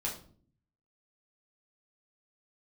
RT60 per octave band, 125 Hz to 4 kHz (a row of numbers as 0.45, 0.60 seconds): 0.95, 0.85, 0.55, 0.45, 0.35, 0.35 seconds